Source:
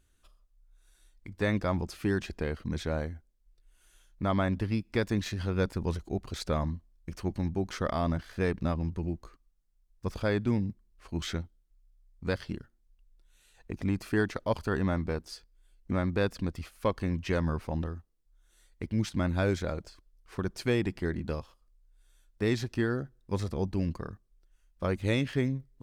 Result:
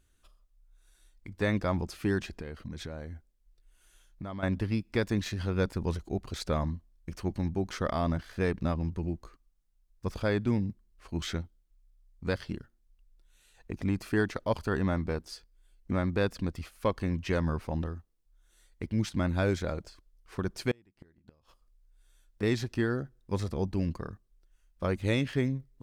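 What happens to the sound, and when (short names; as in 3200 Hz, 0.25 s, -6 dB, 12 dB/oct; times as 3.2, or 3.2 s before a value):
2.28–4.43 compressor, threshold -35 dBFS
20.71–22.43 flipped gate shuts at -25 dBFS, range -33 dB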